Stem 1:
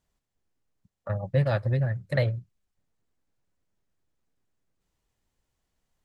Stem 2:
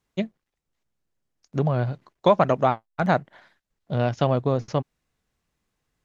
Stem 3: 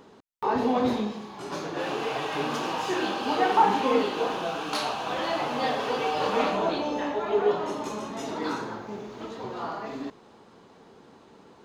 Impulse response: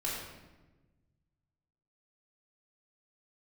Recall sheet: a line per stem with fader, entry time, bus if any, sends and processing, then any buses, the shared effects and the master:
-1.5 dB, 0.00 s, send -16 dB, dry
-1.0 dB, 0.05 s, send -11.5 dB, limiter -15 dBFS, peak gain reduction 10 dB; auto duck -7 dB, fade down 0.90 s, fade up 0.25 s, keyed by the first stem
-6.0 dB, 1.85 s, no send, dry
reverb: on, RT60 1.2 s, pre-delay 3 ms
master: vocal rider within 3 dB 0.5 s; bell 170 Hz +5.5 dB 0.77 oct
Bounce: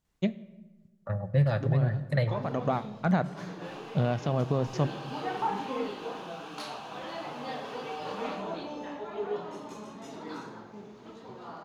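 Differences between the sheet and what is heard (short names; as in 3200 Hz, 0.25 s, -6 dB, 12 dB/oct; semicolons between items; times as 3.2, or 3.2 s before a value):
stem 2: send -11.5 dB -> -19 dB; stem 3 -6.0 dB -> -13.5 dB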